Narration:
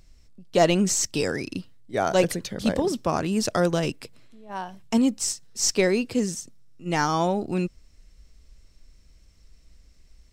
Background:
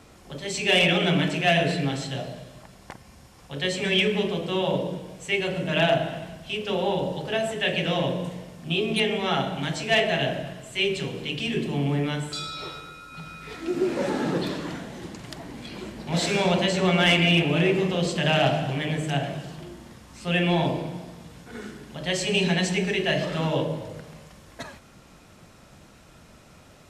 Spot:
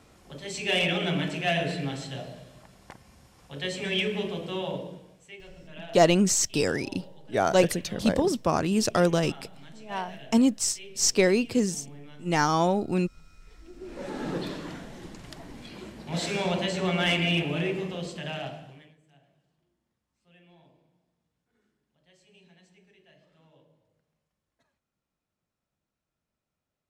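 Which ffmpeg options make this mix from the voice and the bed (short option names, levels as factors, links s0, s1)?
-filter_complex "[0:a]adelay=5400,volume=1[s0];[1:a]volume=3.35,afade=t=out:st=4.46:d=0.89:silence=0.158489,afade=t=in:st=13.79:d=0.55:silence=0.158489,afade=t=out:st=17.35:d=1.6:silence=0.0316228[s1];[s0][s1]amix=inputs=2:normalize=0"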